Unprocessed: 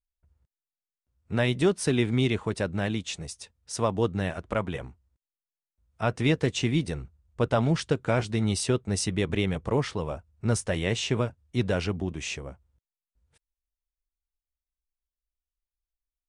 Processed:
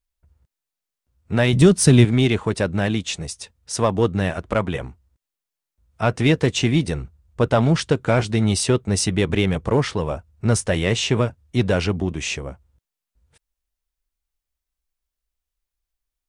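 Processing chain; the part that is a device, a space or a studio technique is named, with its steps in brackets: 1.53–2.05 tone controls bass +11 dB, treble +7 dB; parallel distortion (in parallel at -7.5 dB: hard clip -22.5 dBFS, distortion -7 dB); on the sum: gain +4.5 dB

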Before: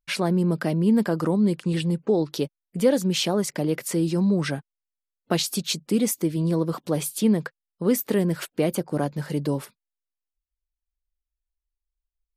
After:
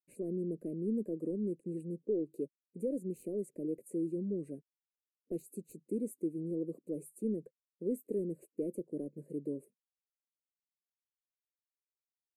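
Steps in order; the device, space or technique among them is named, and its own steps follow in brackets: intercom (BPF 390–4700 Hz; bell 2500 Hz +7.5 dB 0.38 oct; soft clip -15 dBFS, distortion -21 dB); inverse Chebyshev band-stop 780–5700 Hz, stop band 40 dB; gain -4.5 dB

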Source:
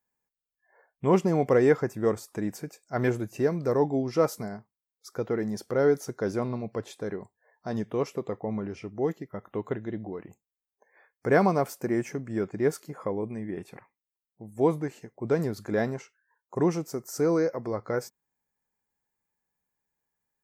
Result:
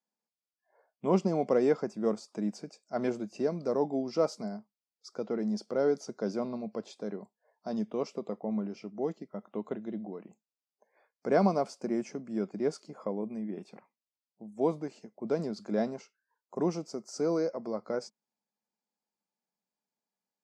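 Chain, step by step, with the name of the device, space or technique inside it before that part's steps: television speaker (speaker cabinet 170–7700 Hz, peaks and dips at 210 Hz +8 dB, 630 Hz +6 dB, 1800 Hz -9 dB, 4800 Hz +8 dB); gain -6 dB

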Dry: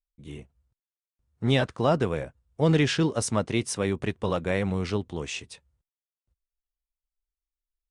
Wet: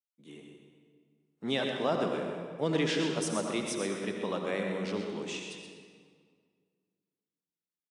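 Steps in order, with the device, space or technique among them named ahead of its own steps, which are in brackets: PA in a hall (HPF 190 Hz 24 dB/oct; bell 3500 Hz +3 dB 0.36 oct; echo 0.127 s -8 dB; reverb RT60 1.9 s, pre-delay 65 ms, DRR 3.5 dB); gain -7 dB

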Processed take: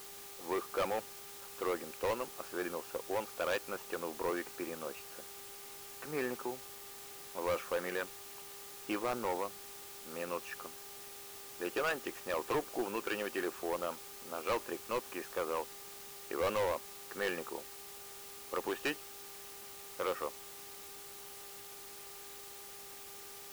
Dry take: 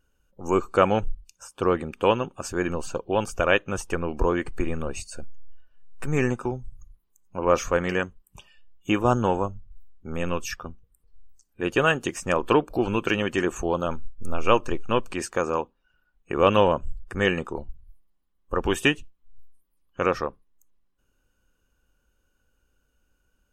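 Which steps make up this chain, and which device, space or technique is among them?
aircraft radio (BPF 370–2400 Hz; hard clip -20.5 dBFS, distortion -7 dB; buzz 400 Hz, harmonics 3, -50 dBFS -4 dB/oct; white noise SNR 10 dB); gain -8 dB

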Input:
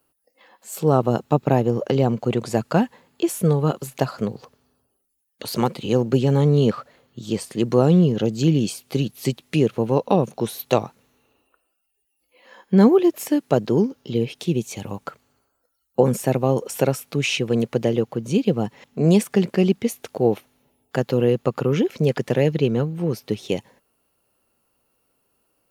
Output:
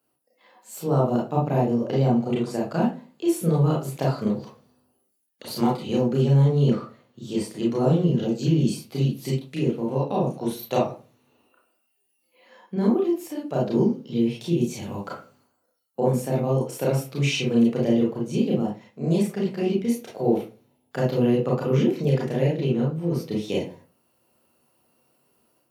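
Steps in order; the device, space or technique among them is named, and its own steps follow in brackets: far laptop microphone (reverb RT60 0.35 s, pre-delay 28 ms, DRR -4 dB; HPF 110 Hz 12 dB/oct; AGC gain up to 6.5 dB); gain -8.5 dB

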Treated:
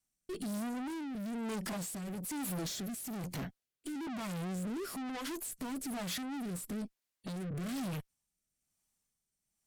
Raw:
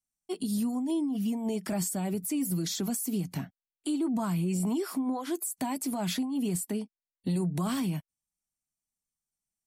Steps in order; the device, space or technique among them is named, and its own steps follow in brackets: overdriven rotary cabinet (tube stage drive 46 dB, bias 0.35; rotary speaker horn 1.1 Hz); gain +10 dB

